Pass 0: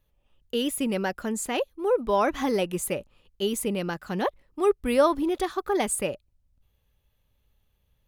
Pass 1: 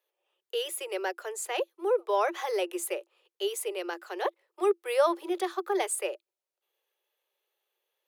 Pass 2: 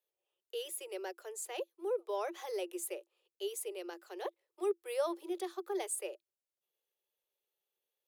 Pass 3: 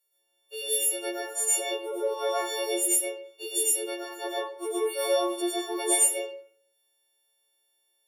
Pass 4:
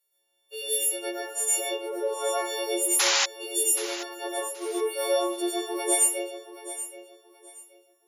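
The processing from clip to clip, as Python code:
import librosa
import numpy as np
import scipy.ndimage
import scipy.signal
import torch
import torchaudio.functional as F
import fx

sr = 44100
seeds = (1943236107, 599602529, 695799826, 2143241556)

y1 = scipy.signal.sosfilt(scipy.signal.cheby1(10, 1.0, 340.0, 'highpass', fs=sr, output='sos'), x)
y1 = y1 * 10.0 ** (-2.5 / 20.0)
y2 = fx.peak_eq(y1, sr, hz=1400.0, db=-9.0, octaves=2.6)
y2 = y2 * 10.0 ** (-5.0 / 20.0)
y3 = fx.freq_snap(y2, sr, grid_st=4)
y3 = fx.rev_freeverb(y3, sr, rt60_s=0.59, hf_ratio=0.7, predelay_ms=75, drr_db=-6.5)
y4 = fx.spec_paint(y3, sr, seeds[0], shape='noise', start_s=2.99, length_s=0.27, low_hz=740.0, high_hz=7300.0, level_db=-23.0)
y4 = fx.echo_feedback(y4, sr, ms=776, feedback_pct=25, wet_db=-13.5)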